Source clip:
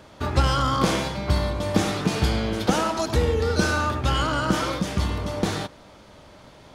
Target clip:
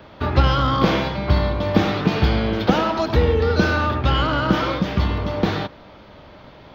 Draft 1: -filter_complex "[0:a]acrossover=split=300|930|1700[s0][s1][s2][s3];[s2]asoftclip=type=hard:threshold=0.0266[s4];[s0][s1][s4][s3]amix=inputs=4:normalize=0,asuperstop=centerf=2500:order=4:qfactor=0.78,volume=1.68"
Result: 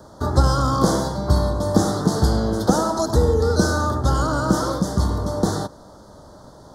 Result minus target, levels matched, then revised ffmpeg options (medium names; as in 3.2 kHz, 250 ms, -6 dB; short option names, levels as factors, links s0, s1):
8 kHz band +16.0 dB
-filter_complex "[0:a]acrossover=split=300|930|1700[s0][s1][s2][s3];[s2]asoftclip=type=hard:threshold=0.0266[s4];[s0][s1][s4][s3]amix=inputs=4:normalize=0,asuperstop=centerf=9100:order=4:qfactor=0.78,volume=1.68"